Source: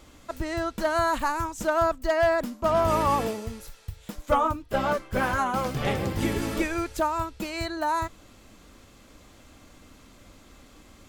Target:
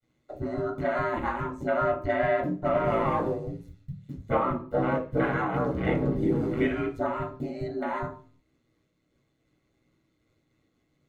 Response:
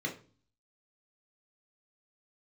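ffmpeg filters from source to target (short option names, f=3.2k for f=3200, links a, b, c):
-filter_complex "[0:a]agate=range=-33dB:threshold=-47dB:ratio=3:detection=peak,aeval=exprs='val(0)*sin(2*PI*59*n/s)':c=same,afwtdn=0.02[a];[1:a]atrim=start_sample=2205,afade=t=out:st=0.42:d=0.01,atrim=end_sample=18963[b];[a][b]afir=irnorm=-1:irlink=0,volume=-2.5dB"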